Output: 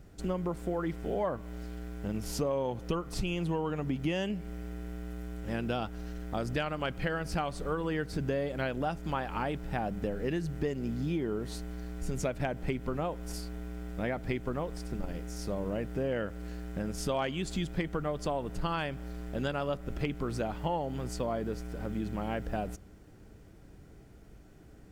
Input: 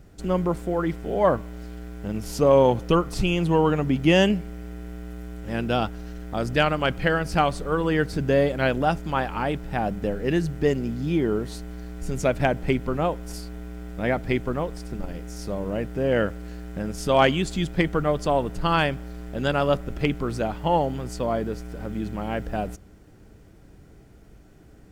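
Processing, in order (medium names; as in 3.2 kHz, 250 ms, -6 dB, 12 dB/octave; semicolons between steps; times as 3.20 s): compression 6:1, threshold -25 dBFS, peak gain reduction 12 dB; trim -3.5 dB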